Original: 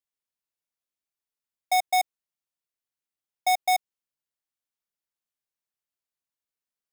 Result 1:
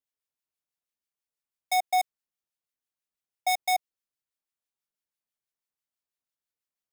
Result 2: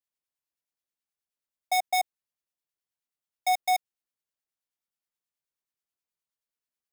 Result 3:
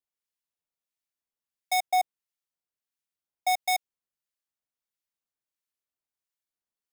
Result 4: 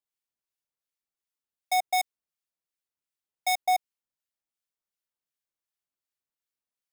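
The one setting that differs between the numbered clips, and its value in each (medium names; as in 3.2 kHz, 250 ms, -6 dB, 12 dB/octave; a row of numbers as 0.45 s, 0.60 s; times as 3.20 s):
harmonic tremolo, rate: 6.1 Hz, 9.4 Hz, 1.5 Hz, 2.7 Hz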